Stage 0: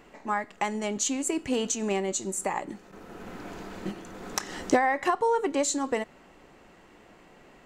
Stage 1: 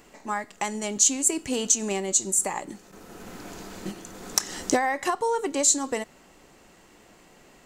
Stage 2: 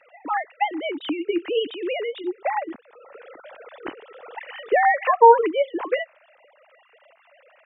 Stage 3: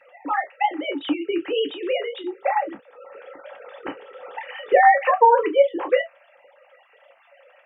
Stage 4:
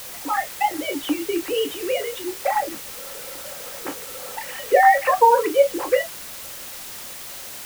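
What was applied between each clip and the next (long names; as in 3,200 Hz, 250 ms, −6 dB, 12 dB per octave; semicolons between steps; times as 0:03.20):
bass and treble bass +1 dB, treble +12 dB; level −1 dB
three sine waves on the formant tracks; level +4.5 dB
convolution reverb, pre-delay 3 ms, DRR 3 dB
bit-depth reduction 6 bits, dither triangular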